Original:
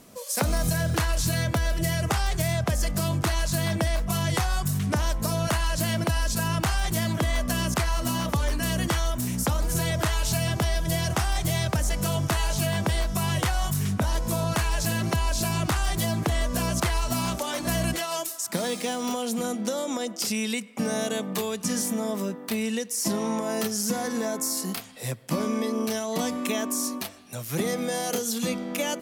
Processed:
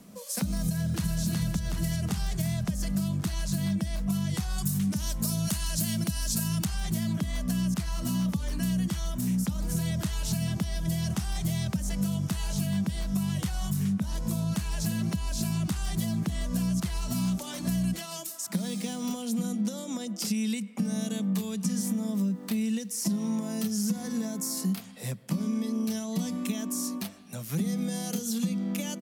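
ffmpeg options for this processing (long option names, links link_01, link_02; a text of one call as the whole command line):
ffmpeg -i in.wav -filter_complex "[0:a]asplit=2[link_01][link_02];[link_02]afade=type=in:start_time=0.66:duration=0.01,afade=type=out:start_time=1.22:duration=0.01,aecho=0:1:370|740|1110|1480|1850|2220|2590|2960|3330:0.749894|0.449937|0.269962|0.161977|0.0971863|0.0583118|0.0349871|0.0209922|0.0125953[link_03];[link_01][link_03]amix=inputs=2:normalize=0,asettb=1/sr,asplit=3[link_04][link_05][link_06];[link_04]atrim=end=4.584[link_07];[link_05]atrim=start=4.58:end=6.65,asetpts=PTS-STARTPTS,afade=type=in:duration=0.004:curve=qsin,afade=type=out:start_time=2.066:duration=0.004:curve=qsin,highshelf=frequency=4000:gain=10[link_08];[link_06]atrim=start=6.646[link_09];[link_07][link_08]acrossfade=duration=0.004:curve1=hsin:curve2=qsin[link_10];[link_10][link_09]acrossfade=duration=0.004:curve1=qsin:curve2=hsin,asettb=1/sr,asplit=3[link_11][link_12][link_13];[link_11]atrim=end=21.944[link_14];[link_12]atrim=start=21.94:end=24.69,asetpts=PTS-STARTPTS,afade=type=in:duration=0.004:curve=qsin,afade=type=out:start_time=2.746:duration=0.004:curve=qsin,acrusher=bits=8:mix=0:aa=0.5[link_15];[link_13]atrim=start=24.686[link_16];[link_14][link_15]acrossfade=duration=0.004:curve1=hsin:curve2=qsin[link_17];[link_17][link_16]acrossfade=duration=0.004:curve1=qsin:curve2=hsin,acrossover=split=260|3000[link_18][link_19][link_20];[link_19]acompressor=threshold=-36dB:ratio=6[link_21];[link_18][link_21][link_20]amix=inputs=3:normalize=0,equalizer=frequency=190:width=2.8:gain=14.5,acompressor=threshold=-20dB:ratio=6,volume=-4.5dB" out.wav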